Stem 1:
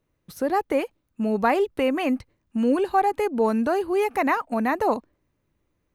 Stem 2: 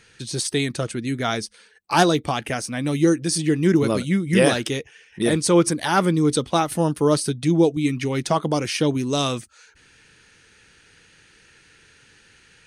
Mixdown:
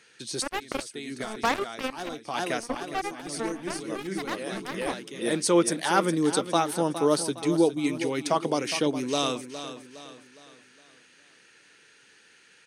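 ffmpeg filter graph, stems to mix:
ffmpeg -i stem1.wav -i stem2.wav -filter_complex "[0:a]bandreject=frequency=60:width_type=h:width=6,bandreject=frequency=120:width_type=h:width=6,bandreject=frequency=180:width_type=h:width=6,bandreject=frequency=240:width_type=h:width=6,bandreject=frequency=300:width_type=h:width=6,bandreject=frequency=360:width_type=h:width=6,bandreject=frequency=420:width_type=h:width=6,bandreject=frequency=480:width_type=h:width=6,bandreject=frequency=540:width_type=h:width=6,bandreject=frequency=600:width_type=h:width=6,acrusher=bits=2:mix=0:aa=0.5,volume=-4.5dB,afade=type=out:start_time=1.56:duration=0.57:silence=0.473151,asplit=2[link_01][link_02];[1:a]highpass=250,volume=-3.5dB,asplit=2[link_03][link_04];[link_04]volume=-11.5dB[link_05];[link_02]apad=whole_len=558734[link_06];[link_03][link_06]sidechaincompress=threshold=-49dB:ratio=8:attack=27:release=295[link_07];[link_05]aecho=0:1:412|824|1236|1648|2060|2472:1|0.42|0.176|0.0741|0.0311|0.0131[link_08];[link_01][link_07][link_08]amix=inputs=3:normalize=0" out.wav

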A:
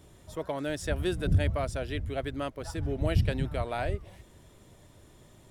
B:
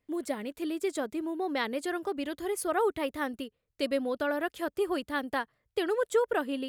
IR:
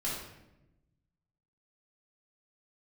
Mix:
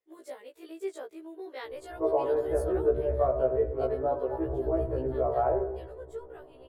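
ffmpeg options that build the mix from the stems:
-filter_complex "[0:a]lowpass=frequency=1100:width=0.5412,lowpass=frequency=1100:width=1.3066,lowshelf=frequency=380:gain=5.5,alimiter=limit=-19dB:level=0:latency=1:release=151,adelay=1650,volume=2.5dB,asplit=2[link_01][link_02];[link_02]volume=-6.5dB[link_03];[1:a]volume=-9dB,afade=type=out:start_time=2.33:duration=0.73:silence=0.266073[link_04];[2:a]atrim=start_sample=2205[link_05];[link_03][link_05]afir=irnorm=-1:irlink=0[link_06];[link_01][link_04][link_06]amix=inputs=3:normalize=0,lowshelf=frequency=300:width_type=q:width=3:gain=-12,afftfilt=real='re*1.73*eq(mod(b,3),0)':imag='im*1.73*eq(mod(b,3),0)':win_size=2048:overlap=0.75"

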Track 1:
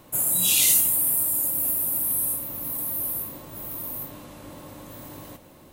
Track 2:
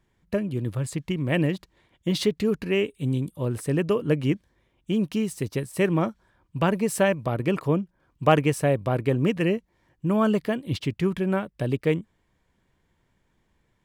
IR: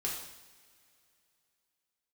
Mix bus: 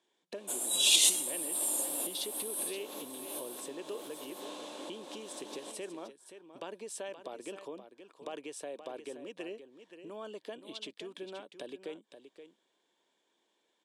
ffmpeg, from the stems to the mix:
-filter_complex "[0:a]adelay=350,volume=1.5dB[link_01];[1:a]alimiter=limit=-15.5dB:level=0:latency=1:release=24,highshelf=frequency=7900:gain=9,acompressor=threshold=-32dB:ratio=16,volume=-3.5dB,asplit=3[link_02][link_03][link_04];[link_03]volume=-10.5dB[link_05];[link_04]apad=whole_len=267870[link_06];[link_01][link_06]sidechaincompress=threshold=-43dB:ratio=8:attack=28:release=182[link_07];[link_05]aecho=0:1:524:1[link_08];[link_07][link_02][link_08]amix=inputs=3:normalize=0,highpass=frequency=320:width=0.5412,highpass=frequency=320:width=1.3066,equalizer=frequency=1300:width_type=q:width=4:gain=-6,equalizer=frequency=2000:width_type=q:width=4:gain=-7,equalizer=frequency=3500:width_type=q:width=4:gain=8,lowpass=frequency=9100:width=0.5412,lowpass=frequency=9100:width=1.3066"

